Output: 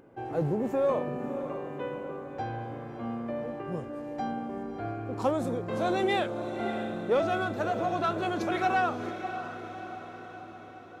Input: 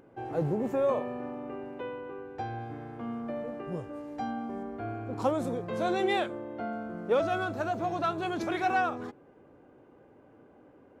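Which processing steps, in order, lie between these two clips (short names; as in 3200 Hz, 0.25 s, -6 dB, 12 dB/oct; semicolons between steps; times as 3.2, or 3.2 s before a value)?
in parallel at -11.5 dB: hard clip -25 dBFS, distortion -14 dB; on the sum: diffused feedback echo 0.6 s, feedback 58%, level -10 dB; gain -1 dB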